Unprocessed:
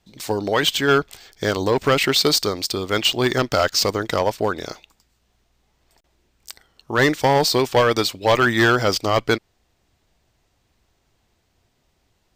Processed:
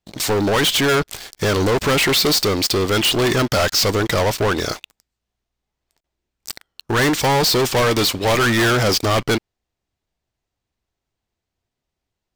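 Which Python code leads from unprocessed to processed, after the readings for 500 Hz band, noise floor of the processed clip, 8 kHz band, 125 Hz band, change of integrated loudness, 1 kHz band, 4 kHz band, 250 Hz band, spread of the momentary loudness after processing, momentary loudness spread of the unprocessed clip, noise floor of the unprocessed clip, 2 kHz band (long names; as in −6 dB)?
+1.0 dB, −82 dBFS, +5.0 dB, +4.5 dB, +2.0 dB, +0.5 dB, +2.5 dB, +3.0 dB, 8 LU, 8 LU, −67 dBFS, +1.5 dB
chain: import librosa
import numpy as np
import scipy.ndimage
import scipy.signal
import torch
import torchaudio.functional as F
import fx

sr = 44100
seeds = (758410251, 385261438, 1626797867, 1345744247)

y = fx.leveller(x, sr, passes=5)
y = F.gain(torch.from_numpy(y), -5.5).numpy()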